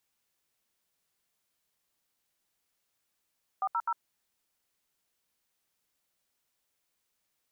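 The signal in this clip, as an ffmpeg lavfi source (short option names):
-f lavfi -i "aevalsrc='0.0335*clip(min(mod(t,0.127),0.054-mod(t,0.127))/0.002,0,1)*(eq(floor(t/0.127),0)*(sin(2*PI*770*mod(t,0.127))+sin(2*PI*1209*mod(t,0.127)))+eq(floor(t/0.127),1)*(sin(2*PI*941*mod(t,0.127))+sin(2*PI*1336*mod(t,0.127)))+eq(floor(t/0.127),2)*(sin(2*PI*941*mod(t,0.127))+sin(2*PI*1336*mod(t,0.127))))':d=0.381:s=44100"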